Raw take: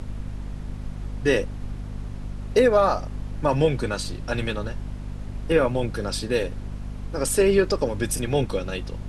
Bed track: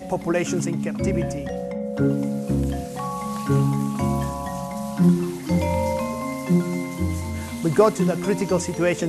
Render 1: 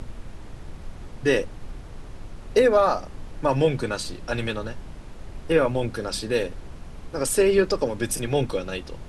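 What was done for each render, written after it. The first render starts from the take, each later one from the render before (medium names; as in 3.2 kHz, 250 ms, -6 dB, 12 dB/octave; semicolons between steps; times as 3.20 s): hum notches 50/100/150/200/250 Hz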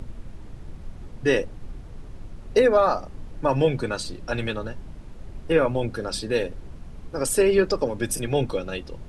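noise reduction 6 dB, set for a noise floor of -41 dBFS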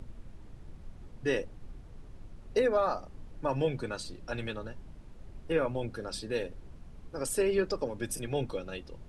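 trim -9 dB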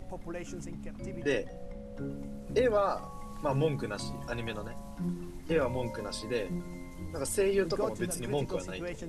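add bed track -18 dB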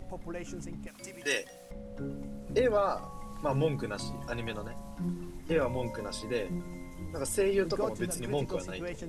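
0.87–1.71 s: tilt EQ +4.5 dB/octave; 5.38–7.56 s: band-stop 4.4 kHz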